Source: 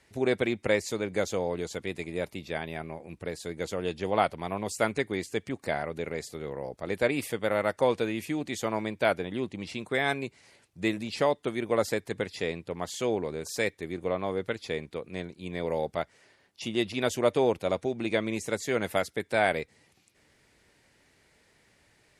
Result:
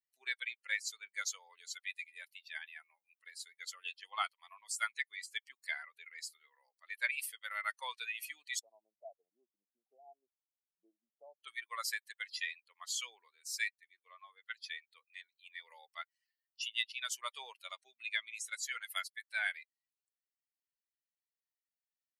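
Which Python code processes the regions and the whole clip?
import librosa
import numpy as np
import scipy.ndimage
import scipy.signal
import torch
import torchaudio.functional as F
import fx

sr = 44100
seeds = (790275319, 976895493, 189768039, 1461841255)

y = fx.chain(x, sr, fx.ellip_lowpass(hz=740.0, order=4, stop_db=60),
    fx.band_squash(depth_pct=40), at=(8.59, 11.44))
y = fx.bin_expand(y, sr, power=2.0)
y = scipy.signal.sosfilt(scipy.signal.butter(4, 1400.0, 'highpass', fs=sr, output='sos'), y)
y = fx.rider(y, sr, range_db=4, speed_s=0.5)
y = y * librosa.db_to_amplitude(3.5)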